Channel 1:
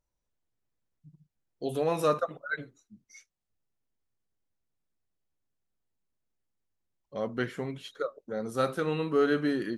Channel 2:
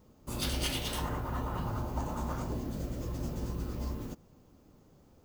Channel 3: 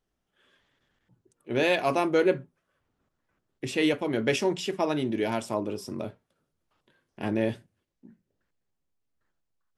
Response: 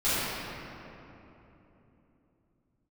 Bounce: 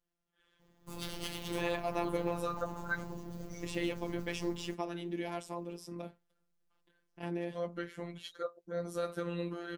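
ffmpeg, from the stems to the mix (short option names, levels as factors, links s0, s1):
-filter_complex "[0:a]adelay=400,volume=1.12[s0];[1:a]equalizer=f=13000:t=o:w=2.3:g=-3,adelay=600,volume=0.708[s1];[2:a]asoftclip=type=hard:threshold=0.2,volume=0.596[s2];[s0][s2]amix=inputs=2:normalize=0,alimiter=limit=0.075:level=0:latency=1:release=444,volume=1[s3];[s1][s3]amix=inputs=2:normalize=0,afftfilt=real='hypot(re,im)*cos(PI*b)':imag='0':win_size=1024:overlap=0.75"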